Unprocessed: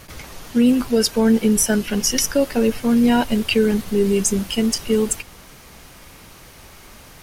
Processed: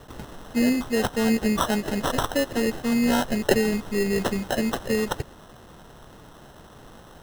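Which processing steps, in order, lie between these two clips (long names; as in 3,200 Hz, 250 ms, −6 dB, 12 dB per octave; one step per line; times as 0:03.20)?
parametric band 2,500 Hz +10.5 dB 1.1 octaves
decimation without filtering 19×
level −6.5 dB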